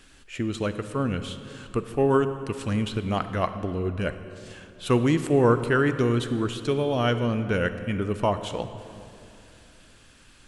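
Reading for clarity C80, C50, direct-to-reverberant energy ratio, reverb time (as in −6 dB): 11.5 dB, 10.5 dB, 10.0 dB, 2.7 s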